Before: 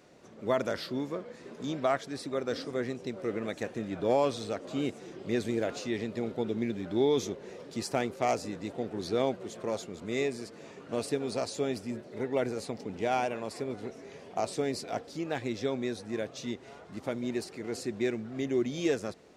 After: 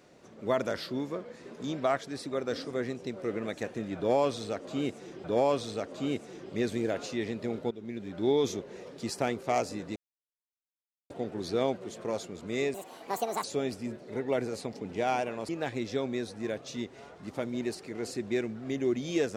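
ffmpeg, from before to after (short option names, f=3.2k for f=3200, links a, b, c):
-filter_complex "[0:a]asplit=7[a][b][c][d][e][f][g];[a]atrim=end=5.242[h];[b]atrim=start=3.968:end=6.44,asetpts=PTS-STARTPTS,afade=t=out:st=2.468:d=0.004:c=hsin:silence=0.158489[i];[c]atrim=start=6.44:end=8.69,asetpts=PTS-STARTPTS,afade=t=in:d=0.59:silence=0.158489,afade=t=out:st=2.246:d=0.004:c=hsin,apad=pad_dur=1.14[j];[d]atrim=start=8.69:end=10.334,asetpts=PTS-STARTPTS,afade=t=in:d=0.004:c=hsin[k];[e]atrim=start=10.33:end=11.48,asetpts=PTS-STARTPTS,asetrate=72765,aresample=44100,atrim=end_sample=30736,asetpts=PTS-STARTPTS[l];[f]atrim=start=11.476:end=13.532[m];[g]atrim=start=15.178[n];[i][j][k]concat=n=3:v=0:a=1[o];[h][o]acrossfade=d=0.004:c1=hsin:c2=hsin[p];[p][l]acrossfade=d=0.004:c1=hsin:c2=hsin[q];[q][m]acrossfade=d=0.004:c1=hsin:c2=hsin[r];[r][n]acrossfade=d=0.004:c1=hsin:c2=hsin"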